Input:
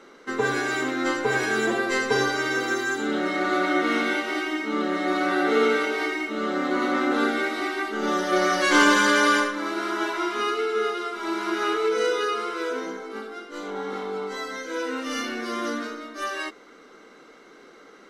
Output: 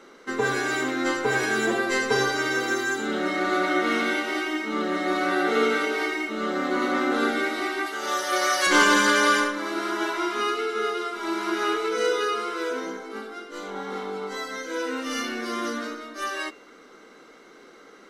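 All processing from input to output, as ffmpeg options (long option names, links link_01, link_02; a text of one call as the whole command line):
ffmpeg -i in.wav -filter_complex "[0:a]asettb=1/sr,asplit=3[link_01][link_02][link_03];[link_01]atrim=end=7.864[link_04];[link_02]atrim=start=7.86:end=8.67,asetpts=PTS-STARTPTS,afade=type=in:duration=0.004:curve=qsin,afade=type=out:start_time=0.806:duration=0.004:curve=qsin,highpass=540,highshelf=frequency=5700:gain=8.5[link_05];[link_03]atrim=start=8.666[link_06];[link_04][link_05]acrossfade=duration=0.004:curve1=hsin:curve2=qsin[link_07];[link_07][link_06]acrossfade=duration=0.004:curve1=qsin:curve2=hsin,highshelf=frequency=7800:gain=4,bandreject=frequency=145.7:width_type=h:width=4,bandreject=frequency=291.4:width_type=h:width=4,bandreject=frequency=437.1:width_type=h:width=4,bandreject=frequency=582.8:width_type=h:width=4,bandreject=frequency=728.5:width_type=h:width=4,bandreject=frequency=874.2:width_type=h:width=4,bandreject=frequency=1019.9:width_type=h:width=4,bandreject=frequency=1165.6:width_type=h:width=4,bandreject=frequency=1311.3:width_type=h:width=4,bandreject=frequency=1457:width_type=h:width=4,bandreject=frequency=1602.7:width_type=h:width=4,bandreject=frequency=1748.4:width_type=h:width=4,bandreject=frequency=1894.1:width_type=h:width=4,bandreject=frequency=2039.8:width_type=h:width=4,bandreject=frequency=2185.5:width_type=h:width=4,bandreject=frequency=2331.2:width_type=h:width=4,bandreject=frequency=2476.9:width_type=h:width=4,bandreject=frequency=2622.6:width_type=h:width=4,bandreject=frequency=2768.3:width_type=h:width=4,bandreject=frequency=2914:width_type=h:width=4,bandreject=frequency=3059.7:width_type=h:width=4,bandreject=frequency=3205.4:width_type=h:width=4,bandreject=frequency=3351.1:width_type=h:width=4,bandreject=frequency=3496.8:width_type=h:width=4,bandreject=frequency=3642.5:width_type=h:width=4,bandreject=frequency=3788.2:width_type=h:width=4,bandreject=frequency=3933.9:width_type=h:width=4,bandreject=frequency=4079.6:width_type=h:width=4,bandreject=frequency=4225.3:width_type=h:width=4,bandreject=frequency=4371:width_type=h:width=4" out.wav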